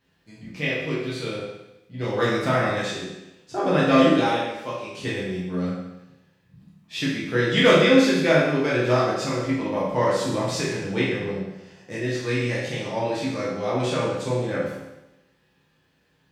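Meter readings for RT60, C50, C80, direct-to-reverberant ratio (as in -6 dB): 0.95 s, 0.5 dB, 3.5 dB, -8.0 dB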